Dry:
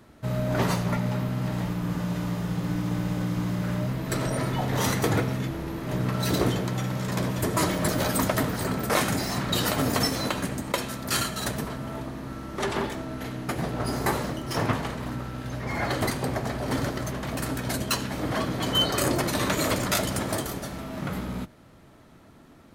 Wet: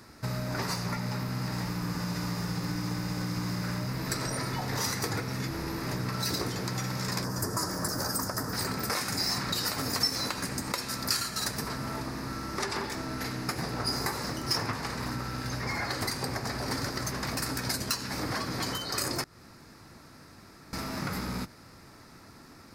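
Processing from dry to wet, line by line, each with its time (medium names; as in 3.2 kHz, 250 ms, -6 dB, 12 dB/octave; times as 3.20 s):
7.24–8.53 s: high-order bell 2.9 kHz -14 dB 1.2 oct
19.24–20.73 s: room tone
whole clip: tilt shelf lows -4 dB, about 720 Hz; compression 5:1, threshold -32 dBFS; graphic EQ with 31 bands 100 Hz +4 dB, 630 Hz -6 dB, 3.15 kHz -11 dB, 5 kHz +11 dB; trim +2.5 dB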